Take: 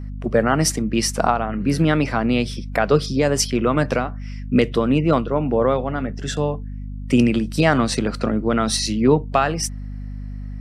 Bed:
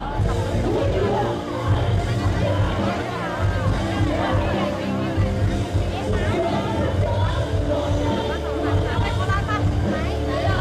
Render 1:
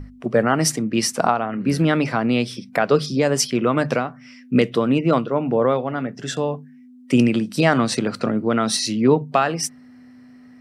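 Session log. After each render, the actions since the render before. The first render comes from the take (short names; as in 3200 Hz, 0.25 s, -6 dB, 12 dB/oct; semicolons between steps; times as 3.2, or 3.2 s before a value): notches 50/100/150/200 Hz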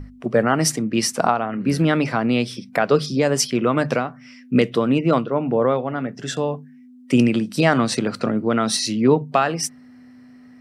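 5.23–6.04 air absorption 97 m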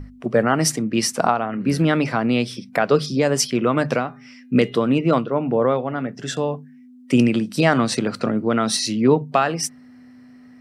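3.98–5.18 de-hum 408.2 Hz, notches 10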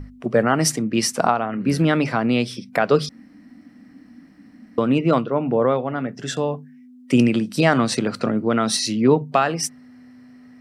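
3.09–4.78 room tone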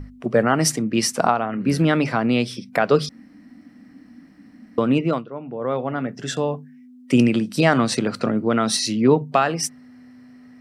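4.98–5.85 dip -11.5 dB, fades 0.26 s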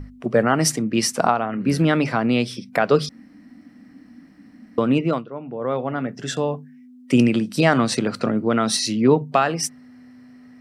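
nothing audible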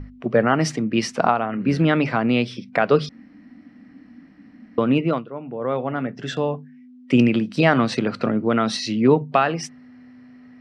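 LPF 3900 Hz 12 dB/oct; bell 2600 Hz +2 dB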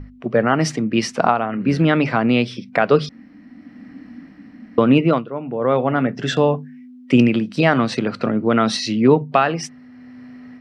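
AGC gain up to 7.5 dB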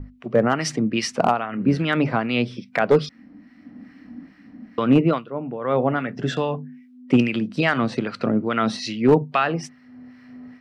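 harmonic tremolo 2.4 Hz, depth 70%, crossover 1100 Hz; hard clip -7.5 dBFS, distortion -21 dB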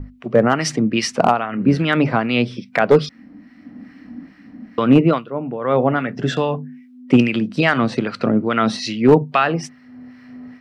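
gain +4 dB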